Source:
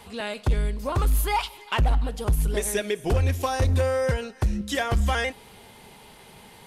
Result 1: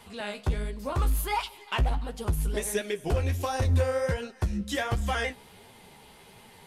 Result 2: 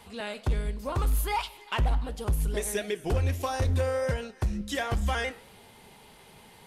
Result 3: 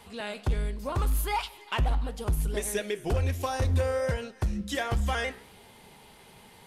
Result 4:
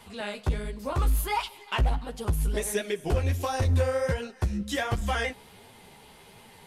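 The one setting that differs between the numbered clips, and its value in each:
flanger, regen: +34, −82, +84, −8%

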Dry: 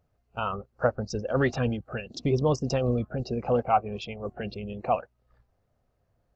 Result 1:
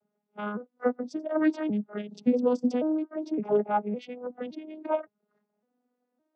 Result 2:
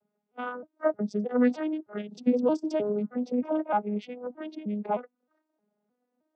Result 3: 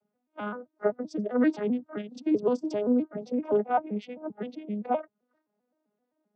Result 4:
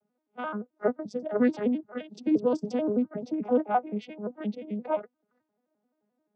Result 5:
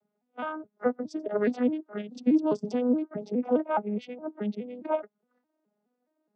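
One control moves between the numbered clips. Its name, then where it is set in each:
vocoder with an arpeggio as carrier, a note every: 562, 310, 130, 87, 209 milliseconds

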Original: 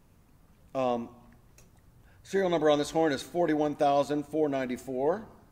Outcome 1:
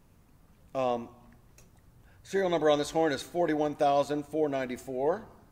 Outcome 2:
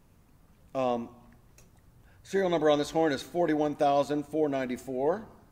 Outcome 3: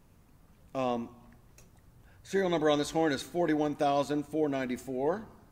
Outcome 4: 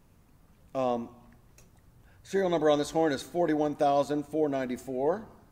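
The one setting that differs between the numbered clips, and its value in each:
dynamic equaliser, frequency: 230, 8,500, 600, 2,500 Hertz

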